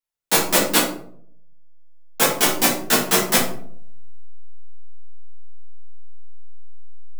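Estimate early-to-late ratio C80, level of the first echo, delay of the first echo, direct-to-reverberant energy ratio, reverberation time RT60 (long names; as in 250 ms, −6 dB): 8.5 dB, no echo audible, no echo audible, −8.5 dB, 0.60 s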